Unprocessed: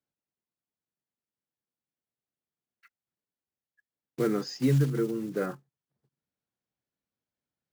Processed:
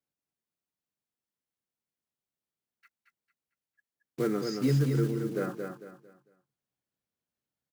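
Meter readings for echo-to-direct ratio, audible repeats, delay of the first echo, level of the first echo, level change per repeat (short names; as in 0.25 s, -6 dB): -5.0 dB, 3, 0.225 s, -5.5 dB, -10.0 dB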